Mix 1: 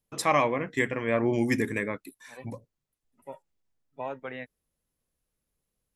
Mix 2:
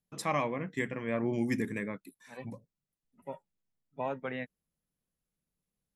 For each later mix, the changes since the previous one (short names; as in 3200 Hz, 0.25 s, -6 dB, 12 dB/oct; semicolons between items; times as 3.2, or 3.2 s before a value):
first voice -8.0 dB; master: add bell 180 Hz +9 dB 0.77 oct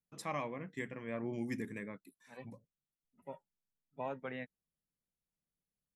first voice -8.0 dB; second voice -5.5 dB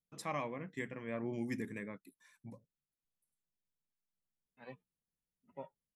second voice: entry +2.30 s